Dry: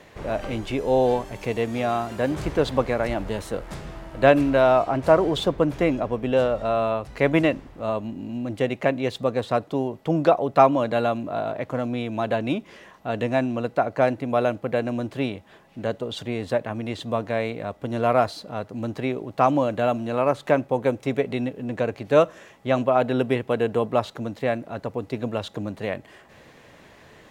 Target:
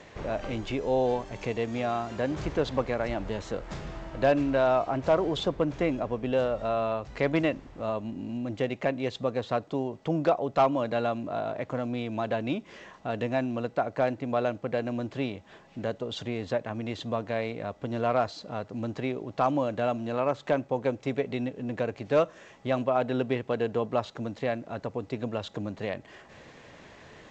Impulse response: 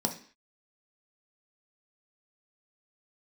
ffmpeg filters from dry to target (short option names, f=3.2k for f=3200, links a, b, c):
-filter_complex "[0:a]asplit=2[a][b];[b]acompressor=threshold=-34dB:ratio=5,volume=2dB[c];[a][c]amix=inputs=2:normalize=0,asoftclip=type=hard:threshold=-7dB,volume=-7.5dB" -ar 16000 -c:a g722